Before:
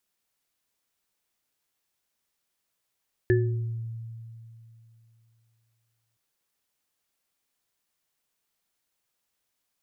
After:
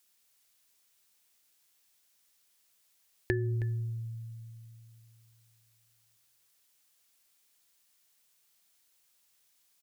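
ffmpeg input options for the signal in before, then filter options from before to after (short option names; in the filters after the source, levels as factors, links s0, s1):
-f lavfi -i "aevalsrc='0.0944*pow(10,-3*t/2.94)*sin(2*PI*114*t)+0.141*pow(10,-3*t/0.63)*sin(2*PI*366*t)+0.0501*pow(10,-3*t/0.25)*sin(2*PI*1740*t)':d=2.87:s=44100"
-af "highshelf=f=2000:g=10.5,acompressor=threshold=0.0447:ratio=6,aecho=1:1:318:0.178"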